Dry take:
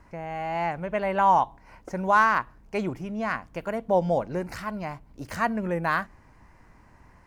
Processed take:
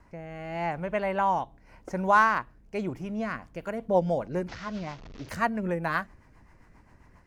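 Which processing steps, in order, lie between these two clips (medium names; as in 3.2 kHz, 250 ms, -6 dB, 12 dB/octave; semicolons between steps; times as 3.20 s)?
4.48–5.29 s: one-bit delta coder 32 kbps, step -38 dBFS; rotary cabinet horn 0.85 Hz, later 7.5 Hz, at 2.97 s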